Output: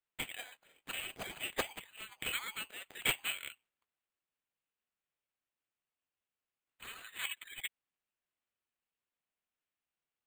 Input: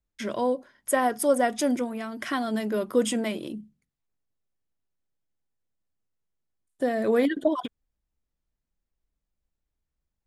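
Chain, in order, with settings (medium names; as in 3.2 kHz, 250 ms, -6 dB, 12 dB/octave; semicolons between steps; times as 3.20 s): Chebyshev high-pass 2.8 kHz, order 5; distance through air 180 m; careless resampling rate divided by 8×, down none, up hold; trim +10 dB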